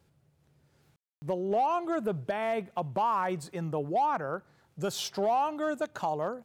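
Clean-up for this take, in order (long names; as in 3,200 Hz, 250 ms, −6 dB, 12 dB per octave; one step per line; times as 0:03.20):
clipped peaks rebuilt −21.5 dBFS
ambience match 0:00.96–0:01.22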